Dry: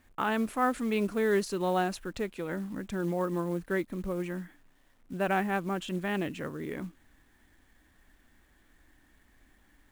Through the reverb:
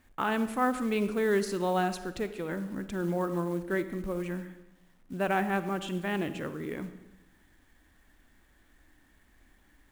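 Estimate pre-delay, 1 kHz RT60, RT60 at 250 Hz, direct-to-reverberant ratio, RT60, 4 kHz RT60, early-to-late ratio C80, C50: 39 ms, 0.90 s, 1.2 s, 11.5 dB, 1.0 s, 0.80 s, 14.0 dB, 12.0 dB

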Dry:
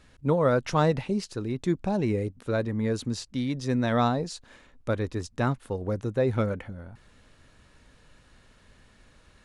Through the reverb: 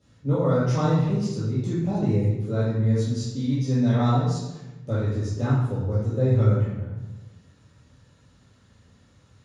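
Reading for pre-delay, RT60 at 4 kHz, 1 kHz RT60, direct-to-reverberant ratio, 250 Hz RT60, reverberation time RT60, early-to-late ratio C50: 3 ms, 0.80 s, 0.95 s, −9.5 dB, 1.5 s, 1.0 s, −1.0 dB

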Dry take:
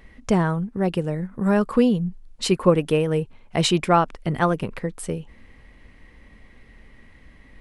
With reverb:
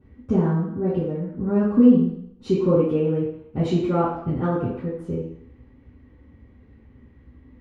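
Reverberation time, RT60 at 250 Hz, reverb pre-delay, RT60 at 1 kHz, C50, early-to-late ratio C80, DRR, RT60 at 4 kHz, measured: 0.70 s, 0.70 s, 3 ms, 0.70 s, 0.0 dB, 5.0 dB, −9.5 dB, 0.70 s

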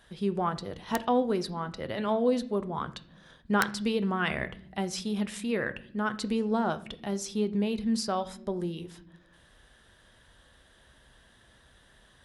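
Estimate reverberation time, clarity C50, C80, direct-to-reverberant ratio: non-exponential decay, 17.0 dB, 20.0 dB, 10.5 dB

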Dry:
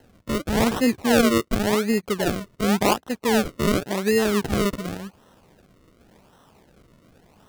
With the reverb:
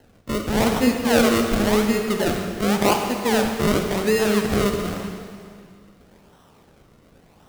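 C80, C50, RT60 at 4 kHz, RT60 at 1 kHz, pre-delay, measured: 5.0 dB, 4.0 dB, 2.0 s, 2.2 s, 6 ms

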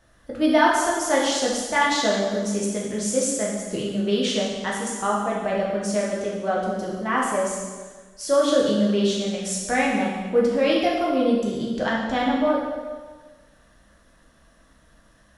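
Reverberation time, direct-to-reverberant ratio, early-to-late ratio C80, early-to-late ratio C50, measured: 1.4 s, −4.5 dB, 3.5 dB, 1.0 dB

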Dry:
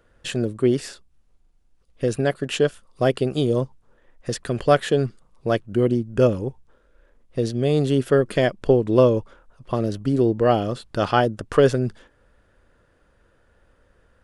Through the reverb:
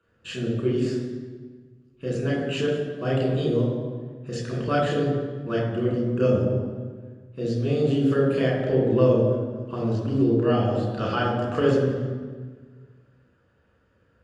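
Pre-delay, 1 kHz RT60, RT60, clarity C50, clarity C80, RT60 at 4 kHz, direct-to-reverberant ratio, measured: 3 ms, 1.4 s, 1.5 s, 1.5 dB, 4.0 dB, 1.1 s, −4.0 dB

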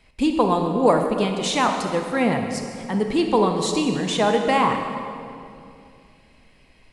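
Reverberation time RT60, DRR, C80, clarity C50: 2.5 s, 3.5 dB, 6.0 dB, 4.5 dB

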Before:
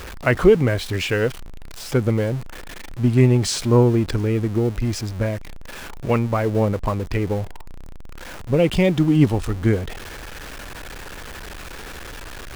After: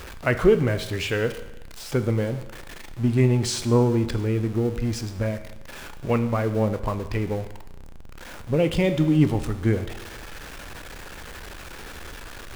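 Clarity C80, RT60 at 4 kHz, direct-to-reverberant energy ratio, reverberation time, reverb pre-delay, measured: 14.0 dB, 1.0 s, 9.5 dB, 1.0 s, 13 ms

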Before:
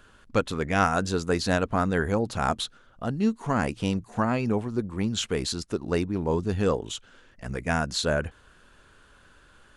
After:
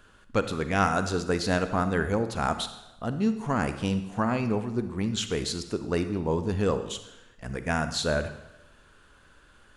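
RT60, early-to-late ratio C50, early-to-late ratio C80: 0.90 s, 10.5 dB, 12.5 dB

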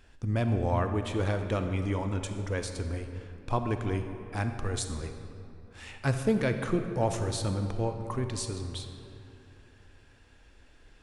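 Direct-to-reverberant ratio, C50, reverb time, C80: 6.5 dB, 7.0 dB, 2.7 s, 8.0 dB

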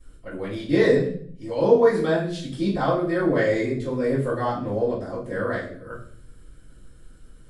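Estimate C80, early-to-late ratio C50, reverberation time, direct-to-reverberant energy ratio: 10.0 dB, 5.5 dB, 0.55 s, −13.5 dB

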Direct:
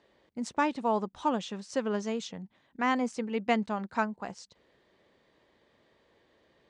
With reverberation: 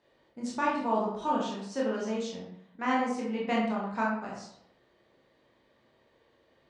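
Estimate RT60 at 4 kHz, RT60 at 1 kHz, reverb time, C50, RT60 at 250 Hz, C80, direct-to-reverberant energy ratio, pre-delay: 0.45 s, 0.70 s, 0.70 s, 2.0 dB, 0.70 s, 5.5 dB, −4.5 dB, 18 ms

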